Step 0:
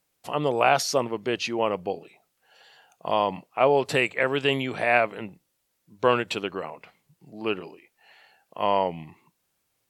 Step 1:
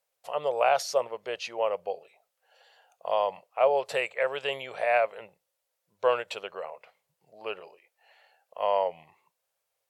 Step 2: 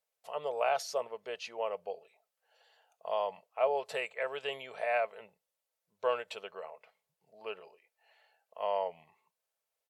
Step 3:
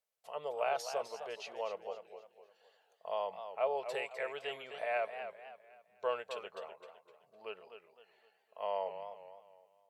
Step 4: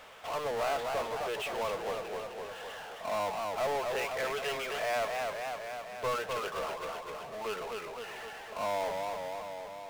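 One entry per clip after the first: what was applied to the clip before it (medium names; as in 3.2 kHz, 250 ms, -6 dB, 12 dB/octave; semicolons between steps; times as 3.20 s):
resonant low shelf 390 Hz -11 dB, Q 3; trim -7 dB
comb 4.6 ms, depth 33%; trim -7 dB
modulated delay 256 ms, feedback 38%, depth 120 cents, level -9.5 dB; trim -4 dB
resampled via 8 kHz; peaking EQ 1.2 kHz +7 dB 1 oct; power-law waveshaper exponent 0.35; trim -7.5 dB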